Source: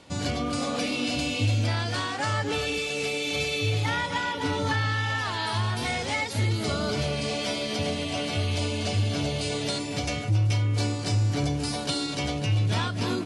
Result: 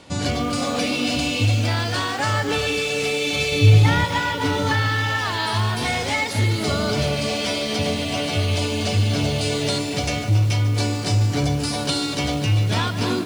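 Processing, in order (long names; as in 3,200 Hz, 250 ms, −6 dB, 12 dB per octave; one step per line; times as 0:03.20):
0:03.52–0:04.05: low-shelf EQ 270 Hz +12 dB
feedback echo at a low word length 147 ms, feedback 80%, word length 7 bits, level −13.5 dB
level +5.5 dB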